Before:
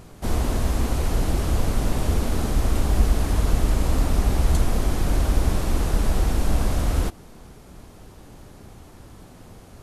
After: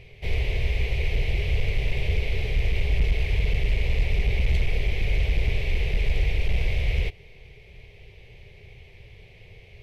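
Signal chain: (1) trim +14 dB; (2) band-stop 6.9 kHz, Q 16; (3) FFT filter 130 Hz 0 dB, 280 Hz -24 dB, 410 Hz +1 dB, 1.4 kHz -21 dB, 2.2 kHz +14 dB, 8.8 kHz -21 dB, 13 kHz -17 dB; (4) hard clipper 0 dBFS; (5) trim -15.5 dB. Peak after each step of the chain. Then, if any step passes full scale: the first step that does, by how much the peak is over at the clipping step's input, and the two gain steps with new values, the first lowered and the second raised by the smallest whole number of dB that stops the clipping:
+7.5 dBFS, +7.5 dBFS, +7.5 dBFS, 0.0 dBFS, -15.5 dBFS; step 1, 7.5 dB; step 1 +6 dB, step 5 -7.5 dB

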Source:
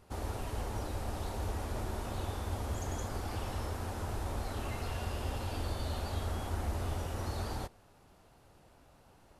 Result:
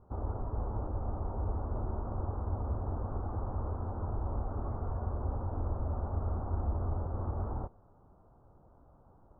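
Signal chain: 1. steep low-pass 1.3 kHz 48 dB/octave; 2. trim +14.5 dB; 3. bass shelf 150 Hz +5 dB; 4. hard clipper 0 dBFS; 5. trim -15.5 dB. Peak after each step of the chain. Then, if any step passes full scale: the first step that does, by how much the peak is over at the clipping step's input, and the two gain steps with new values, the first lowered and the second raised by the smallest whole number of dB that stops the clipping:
-22.5 dBFS, -8.0 dBFS, -5.0 dBFS, -5.0 dBFS, -20.5 dBFS; nothing clips

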